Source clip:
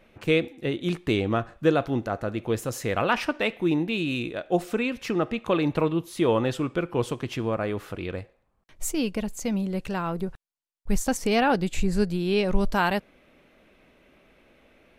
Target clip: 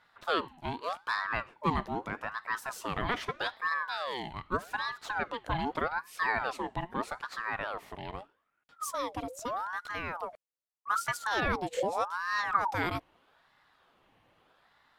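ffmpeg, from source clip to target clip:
-af "aeval=exprs='val(0)*sin(2*PI*970*n/s+970*0.5/0.81*sin(2*PI*0.81*n/s))':c=same,volume=0.531"

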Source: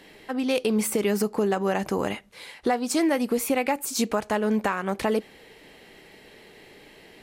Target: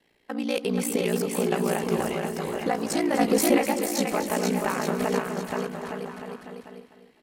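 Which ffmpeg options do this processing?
-filter_complex "[0:a]agate=range=0.2:threshold=0.00794:ratio=16:detection=peak,aeval=exprs='val(0)*sin(2*PI*29*n/s)':c=same,asplit=2[s0][s1];[s1]aecho=0:1:480|864|1171|1417|1614:0.631|0.398|0.251|0.158|0.1[s2];[s0][s2]amix=inputs=2:normalize=0,asplit=3[s3][s4][s5];[s3]afade=t=out:st=3.17:d=0.02[s6];[s4]acontrast=44,afade=t=in:st=3.17:d=0.02,afade=t=out:st=3.57:d=0.02[s7];[s5]afade=t=in:st=3.57:d=0.02[s8];[s6][s7][s8]amix=inputs=3:normalize=0,asplit=2[s9][s10];[s10]aecho=0:1:250|500|750|1000:0.282|0.118|0.0497|0.0209[s11];[s9][s11]amix=inputs=2:normalize=0"

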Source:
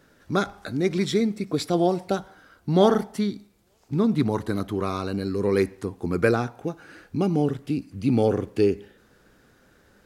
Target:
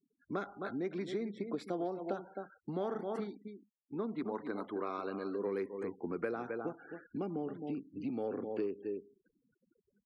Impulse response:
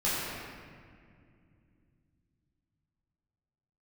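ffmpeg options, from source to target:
-filter_complex "[0:a]asettb=1/sr,asplit=3[s0][s1][s2];[s0]atrim=end=3.214[s3];[s1]atrim=start=3.21:end=5.46,asetpts=PTS-STARTPTS,afade=t=in:d=0.004:c=qsin,afade=t=out:st=2.246:d=0.004:c=qsin,equalizer=f=110:t=o:w=2.1:g=-8.5[s4];[s2]atrim=start=5.456[s5];[s3][s4]acrossfade=d=0.004:c1=hsin:c2=qsin[s6];[s6][s5]acrossfade=d=0.004:c1=qsin:c2=hsin,asplit=2[s7][s8];[s8]adelay=262.4,volume=0.282,highshelf=f=4000:g=-5.9[s9];[s7][s9]amix=inputs=2:normalize=0,afftfilt=real='re*gte(hypot(re,im),0.00708)':imag='im*gte(hypot(re,im),0.00708)':win_size=1024:overlap=0.75,aeval=exprs='0.562*(cos(1*acos(clip(val(0)/0.562,-1,1)))-cos(1*PI/2))+0.0141*(cos(5*acos(clip(val(0)/0.562,-1,1)))-cos(5*PI/2))':c=same,acompressor=threshold=0.0631:ratio=10,acrossover=split=200 2400:gain=0.0794 1 0.2[s10][s11][s12];[s10][s11][s12]amix=inputs=3:normalize=0,volume=0.447"

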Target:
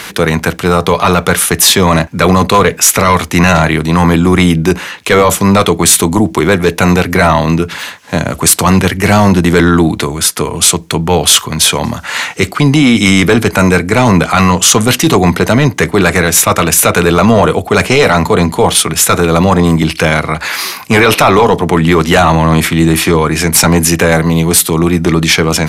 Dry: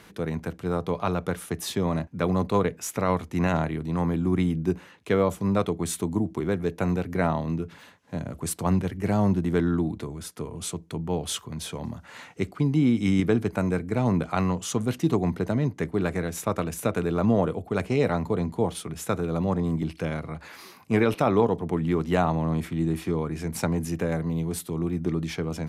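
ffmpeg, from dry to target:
-af "tiltshelf=f=760:g=-7,apsyclip=16.8,volume=0.841"

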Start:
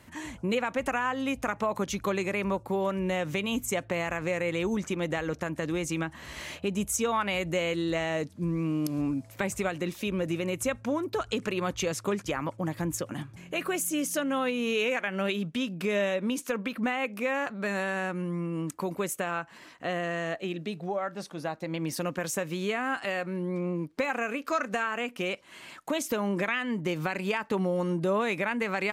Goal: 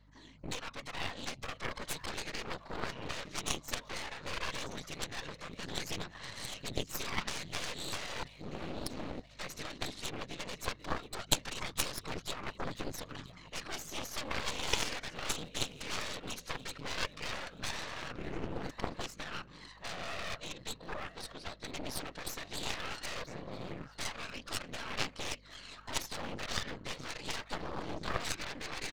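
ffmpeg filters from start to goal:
-filter_complex "[0:a]equalizer=f=240:w=0.36:g=-8,acrossover=split=2700[s0][s1];[s0]alimiter=level_in=1.78:limit=0.0631:level=0:latency=1:release=116,volume=0.562[s2];[s2][s1]amix=inputs=2:normalize=0,dynaudnorm=f=310:g=3:m=3.98,aphaser=in_gain=1:out_gain=1:delay=3.3:decay=0.48:speed=0.16:type=triangular,afftfilt=real='hypot(re,im)*cos(2*PI*random(0))':imag='hypot(re,im)*sin(2*PI*random(1))':win_size=512:overlap=0.75,highpass=f=100:w=0.5412,highpass=f=100:w=1.3066,equalizer=f=210:t=q:w=4:g=-5,equalizer=f=370:t=q:w=4:g=-8,equalizer=f=770:t=q:w=4:g=-4,equalizer=f=1500:t=q:w=4:g=-5,equalizer=f=2500:t=q:w=4:g=-7,equalizer=f=4100:t=q:w=4:g=7,lowpass=f=5400:w=0.5412,lowpass=f=5400:w=1.3066,aeval=exprs='val(0)+0.00224*(sin(2*PI*50*n/s)+sin(2*PI*2*50*n/s)/2+sin(2*PI*3*50*n/s)/3+sin(2*PI*4*50*n/s)/4+sin(2*PI*5*50*n/s)/5)':c=same,aeval=exprs='clip(val(0),-1,0.0335)':c=same,aecho=1:1:981|1962|2943:0.168|0.0604|0.0218,aeval=exprs='0.251*(cos(1*acos(clip(val(0)/0.251,-1,1)))-cos(1*PI/2))+0.1*(cos(3*acos(clip(val(0)/0.251,-1,1)))-cos(3*PI/2))+0.0562*(cos(4*acos(clip(val(0)/0.251,-1,1)))-cos(4*PI/2))':c=same,volume=1.88"

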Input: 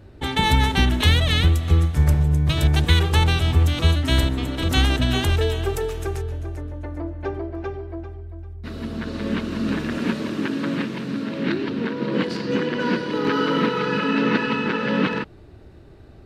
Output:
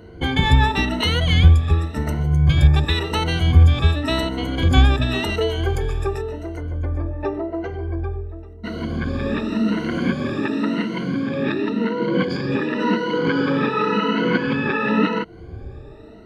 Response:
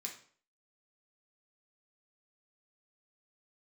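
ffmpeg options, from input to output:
-filter_complex "[0:a]afftfilt=real='re*pow(10,19/40*sin(2*PI*(1.9*log(max(b,1)*sr/1024/100)/log(2)-(0.92)*(pts-256)/sr)))':imag='im*pow(10,19/40*sin(2*PI*(1.9*log(max(b,1)*sr/1024/100)/log(2)-(0.92)*(pts-256)/sr)))':win_size=1024:overlap=0.75,asplit=2[s0][s1];[s1]acompressor=threshold=0.0447:ratio=12,volume=1.33[s2];[s0][s2]amix=inputs=2:normalize=0,aeval=exprs='val(0)+0.00631*sin(2*PI*450*n/s)':c=same,aemphasis=mode=reproduction:type=50kf,volume=0.668"

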